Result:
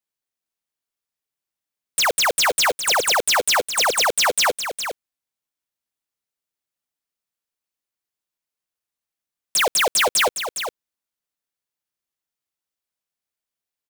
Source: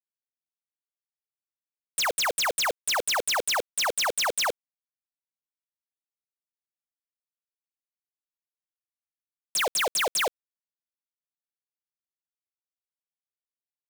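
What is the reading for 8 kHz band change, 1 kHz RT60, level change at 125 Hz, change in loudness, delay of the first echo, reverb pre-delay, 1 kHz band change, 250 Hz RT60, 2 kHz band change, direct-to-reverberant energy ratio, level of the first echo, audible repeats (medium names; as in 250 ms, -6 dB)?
+7.5 dB, no reverb, +7.5 dB, +7.0 dB, 410 ms, no reverb, +7.5 dB, no reverb, +7.5 dB, no reverb, -8.5 dB, 1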